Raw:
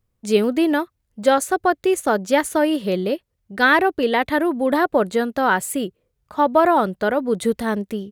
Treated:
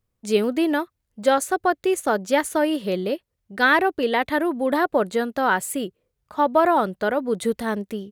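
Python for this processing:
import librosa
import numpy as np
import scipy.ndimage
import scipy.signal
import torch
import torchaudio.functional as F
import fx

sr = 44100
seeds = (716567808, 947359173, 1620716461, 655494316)

y = fx.low_shelf(x, sr, hz=210.0, db=-3.5)
y = F.gain(torch.from_numpy(y), -2.0).numpy()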